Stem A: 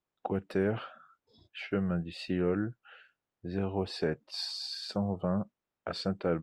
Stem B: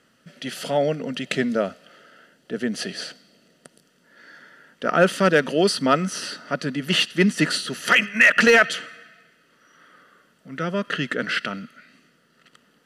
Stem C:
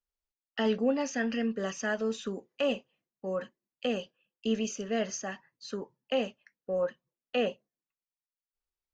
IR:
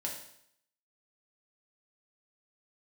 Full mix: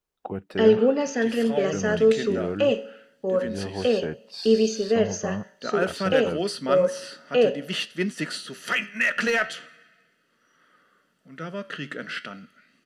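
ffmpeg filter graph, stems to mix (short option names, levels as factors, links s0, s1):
-filter_complex "[0:a]volume=1[s0];[1:a]flanger=delay=7.7:depth=6.7:regen=77:speed=0.41:shape=triangular,adelay=800,volume=0.631[s1];[2:a]equalizer=f=430:t=o:w=0.51:g=10.5,volume=1.19,asplit=2[s2][s3];[s3]volume=0.376[s4];[3:a]atrim=start_sample=2205[s5];[s4][s5]afir=irnorm=-1:irlink=0[s6];[s0][s1][s2][s6]amix=inputs=4:normalize=0"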